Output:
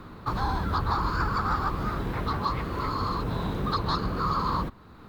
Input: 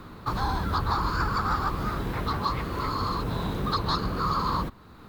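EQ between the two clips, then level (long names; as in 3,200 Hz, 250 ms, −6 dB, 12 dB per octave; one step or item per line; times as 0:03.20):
high-shelf EQ 4,200 Hz −6 dB
0.0 dB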